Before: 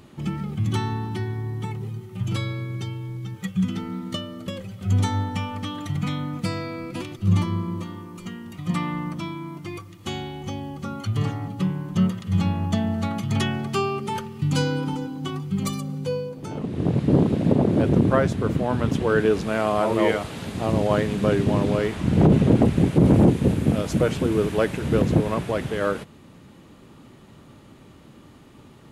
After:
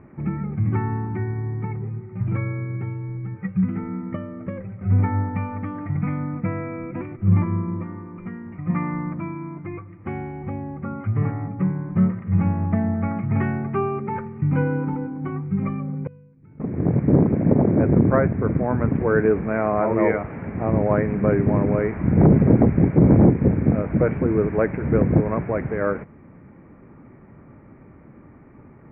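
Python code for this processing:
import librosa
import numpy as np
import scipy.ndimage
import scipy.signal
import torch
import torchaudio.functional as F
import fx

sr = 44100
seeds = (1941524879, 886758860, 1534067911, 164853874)

y = fx.tone_stack(x, sr, knobs='6-0-2', at=(16.07, 16.6))
y = scipy.signal.sosfilt(scipy.signal.cheby1(6, 1.0, 2300.0, 'lowpass', fs=sr, output='sos'), y)
y = fx.low_shelf(y, sr, hz=380.0, db=3.5)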